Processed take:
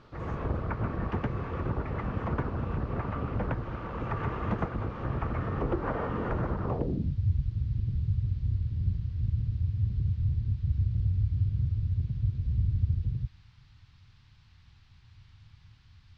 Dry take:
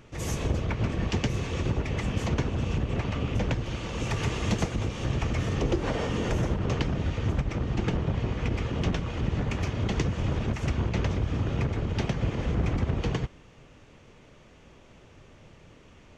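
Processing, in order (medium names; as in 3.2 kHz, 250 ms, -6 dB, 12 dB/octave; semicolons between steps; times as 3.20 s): low-pass sweep 1.3 kHz -> 100 Hz, 6.64–7.20 s; band noise 810–4700 Hz -65 dBFS; trim -4 dB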